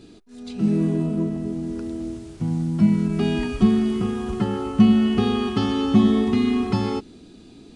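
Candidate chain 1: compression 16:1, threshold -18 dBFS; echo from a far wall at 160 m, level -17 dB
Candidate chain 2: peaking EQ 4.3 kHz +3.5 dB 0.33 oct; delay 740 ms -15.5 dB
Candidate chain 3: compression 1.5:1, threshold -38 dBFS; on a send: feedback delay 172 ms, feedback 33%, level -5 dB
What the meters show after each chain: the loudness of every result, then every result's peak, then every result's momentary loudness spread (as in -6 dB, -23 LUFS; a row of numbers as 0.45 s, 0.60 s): -24.5 LUFS, -21.5 LUFS, -28.0 LUFS; -10.0 dBFS, -4.0 dBFS, -13.0 dBFS; 8 LU, 14 LU, 11 LU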